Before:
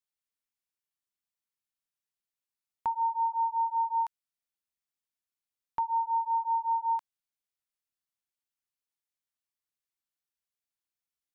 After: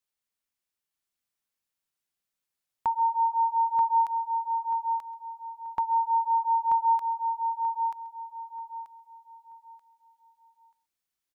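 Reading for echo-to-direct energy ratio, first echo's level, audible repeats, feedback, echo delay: -3.5 dB, -19.0 dB, 6, no steady repeat, 0.133 s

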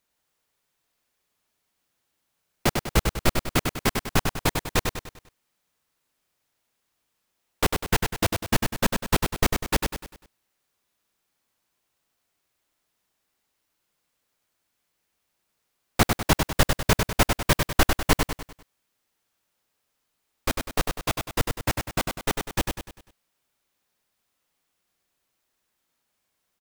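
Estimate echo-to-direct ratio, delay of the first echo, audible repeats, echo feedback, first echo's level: -4.0 dB, 99 ms, 5, 43%, -5.0 dB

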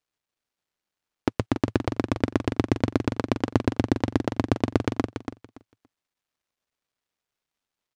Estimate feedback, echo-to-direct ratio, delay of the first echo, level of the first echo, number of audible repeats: 18%, -8.0 dB, 0.284 s, -8.0 dB, 2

